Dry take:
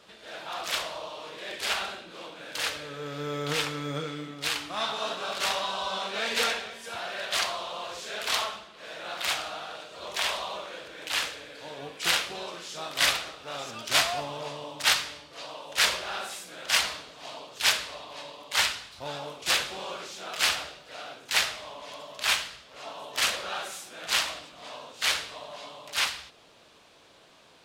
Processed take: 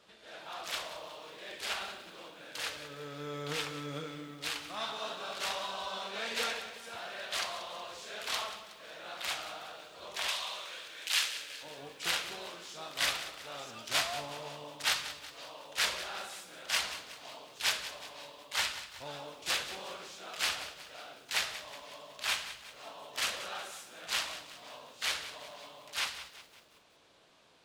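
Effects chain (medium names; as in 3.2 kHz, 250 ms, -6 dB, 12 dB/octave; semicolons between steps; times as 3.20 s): 10.28–11.63 s: tilt shelf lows -9 dB, about 1.1 kHz; bit-crushed delay 184 ms, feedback 55%, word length 8-bit, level -13 dB; trim -7.5 dB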